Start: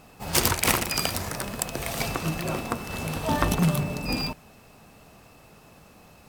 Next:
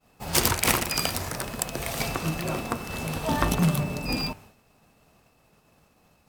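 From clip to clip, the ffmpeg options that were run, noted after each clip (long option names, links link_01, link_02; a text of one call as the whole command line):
ffmpeg -i in.wav -af "bandreject=frequency=98.95:width_type=h:width=4,bandreject=frequency=197.9:width_type=h:width=4,bandreject=frequency=296.85:width_type=h:width=4,bandreject=frequency=395.8:width_type=h:width=4,bandreject=frequency=494.75:width_type=h:width=4,bandreject=frequency=593.7:width_type=h:width=4,bandreject=frequency=692.65:width_type=h:width=4,bandreject=frequency=791.6:width_type=h:width=4,bandreject=frequency=890.55:width_type=h:width=4,bandreject=frequency=989.5:width_type=h:width=4,bandreject=frequency=1088.45:width_type=h:width=4,bandreject=frequency=1187.4:width_type=h:width=4,bandreject=frequency=1286.35:width_type=h:width=4,bandreject=frequency=1385.3:width_type=h:width=4,bandreject=frequency=1484.25:width_type=h:width=4,bandreject=frequency=1583.2:width_type=h:width=4,bandreject=frequency=1682.15:width_type=h:width=4,bandreject=frequency=1781.1:width_type=h:width=4,bandreject=frequency=1880.05:width_type=h:width=4,bandreject=frequency=1979:width_type=h:width=4,bandreject=frequency=2077.95:width_type=h:width=4,bandreject=frequency=2176.9:width_type=h:width=4,bandreject=frequency=2275.85:width_type=h:width=4,bandreject=frequency=2374.8:width_type=h:width=4,bandreject=frequency=2473.75:width_type=h:width=4,bandreject=frequency=2572.7:width_type=h:width=4,bandreject=frequency=2671.65:width_type=h:width=4,bandreject=frequency=2770.6:width_type=h:width=4,bandreject=frequency=2869.55:width_type=h:width=4,bandreject=frequency=2968.5:width_type=h:width=4,agate=range=-33dB:threshold=-44dB:ratio=3:detection=peak" out.wav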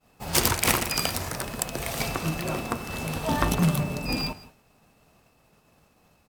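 ffmpeg -i in.wav -af "aecho=1:1:167:0.1" out.wav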